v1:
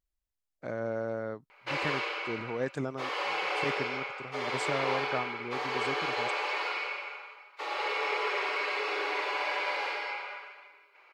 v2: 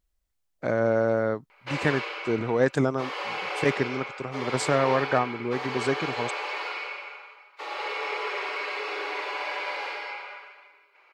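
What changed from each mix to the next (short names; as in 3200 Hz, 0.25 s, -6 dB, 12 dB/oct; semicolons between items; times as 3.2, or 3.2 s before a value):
speech +10.5 dB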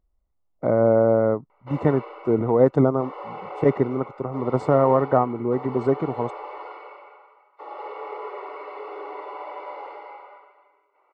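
speech +6.0 dB; master: add polynomial smoothing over 65 samples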